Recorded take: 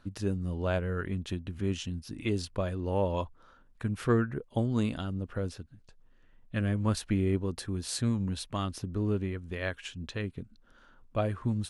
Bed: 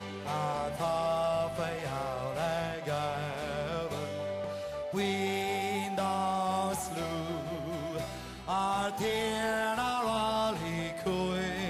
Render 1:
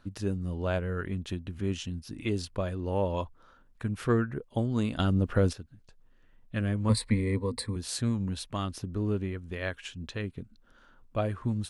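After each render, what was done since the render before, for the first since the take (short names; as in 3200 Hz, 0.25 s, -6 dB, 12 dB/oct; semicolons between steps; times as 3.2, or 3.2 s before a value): 4.99–5.53 gain +9 dB; 6.89–7.76 ripple EQ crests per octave 0.96, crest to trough 16 dB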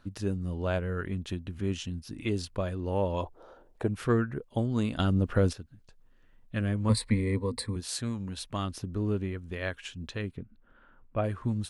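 3.23–3.88 band shelf 530 Hz +15 dB; 7.8–8.38 low shelf 380 Hz -6 dB; 10.37–11.24 LPF 2700 Hz 24 dB/oct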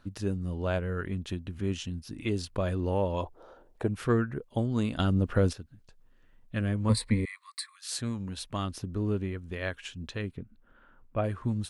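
2.56–3.02 fast leveller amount 50%; 7.25–7.91 Chebyshev high-pass 1100 Hz, order 8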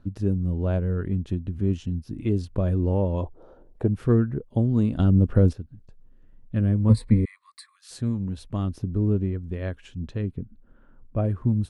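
tilt shelf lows +9 dB, about 660 Hz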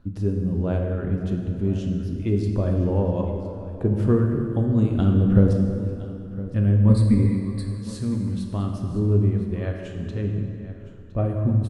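echo 1.013 s -16.5 dB; plate-style reverb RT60 2.6 s, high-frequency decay 0.7×, DRR 1.5 dB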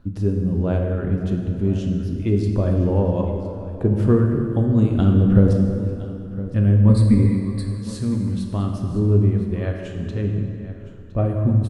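gain +3 dB; limiter -3 dBFS, peak gain reduction 2 dB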